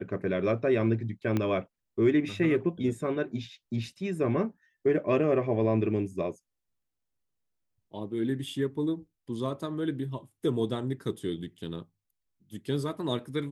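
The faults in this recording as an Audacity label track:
1.370000	1.370000	click −16 dBFS

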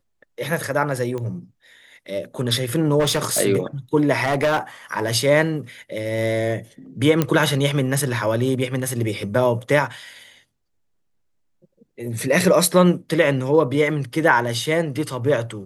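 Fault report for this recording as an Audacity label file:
1.180000	1.180000	click −18 dBFS
2.990000	3.410000	clipping −15.5 dBFS
4.230000	4.580000	clipping −15 dBFS
7.220000	7.220000	click −5 dBFS

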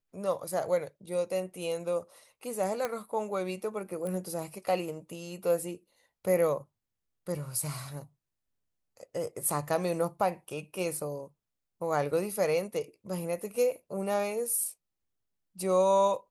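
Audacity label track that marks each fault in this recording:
2.850000	2.850000	click −17 dBFS
4.070000	4.070000	click −25 dBFS

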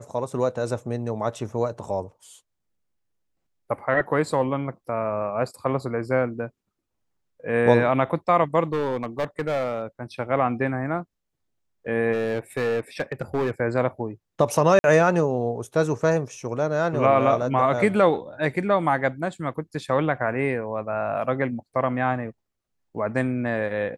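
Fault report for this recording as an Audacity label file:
8.720000	9.830000	clipping −20 dBFS
12.120000	13.510000	clipping −19.5 dBFS
14.790000	14.840000	drop-out 51 ms

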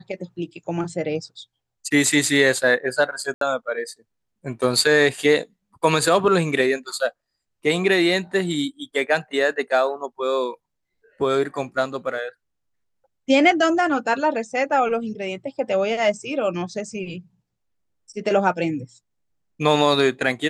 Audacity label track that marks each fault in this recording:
3.340000	3.410000	drop-out 73 ms

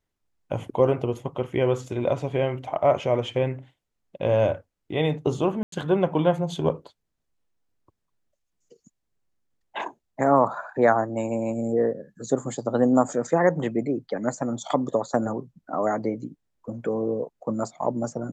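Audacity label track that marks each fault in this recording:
5.630000	5.720000	drop-out 93 ms

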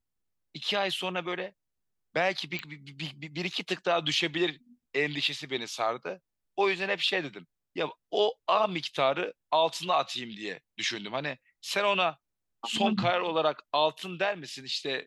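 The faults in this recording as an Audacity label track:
2.590000	2.590000	click −19 dBFS

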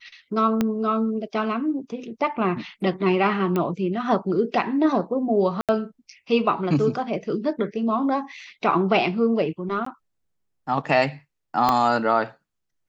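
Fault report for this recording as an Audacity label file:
0.610000	0.610000	click −9 dBFS
3.560000	3.560000	click −13 dBFS
5.610000	5.690000	drop-out 77 ms
9.850000	9.860000	drop-out 14 ms
11.690000	11.690000	click −7 dBFS

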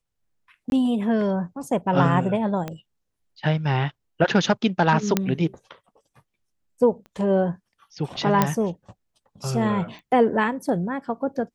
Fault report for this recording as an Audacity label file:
0.700000	0.720000	drop-out 21 ms
2.680000	2.680000	click −17 dBFS
5.170000	5.170000	click −5 dBFS
7.060000	7.060000	click −32 dBFS
8.420000	8.420000	click −4 dBFS
9.990000	9.990000	click −32 dBFS

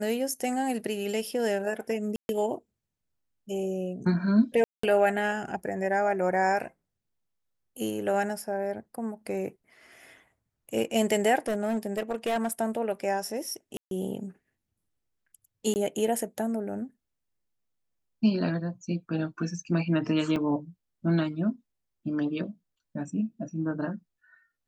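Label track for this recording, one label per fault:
2.160000	2.290000	drop-out 131 ms
4.640000	4.830000	drop-out 194 ms
11.480000	12.530000	clipping −23.5 dBFS
13.770000	13.910000	drop-out 142 ms
15.740000	15.760000	drop-out 19 ms
20.360000	20.360000	drop-out 4.7 ms

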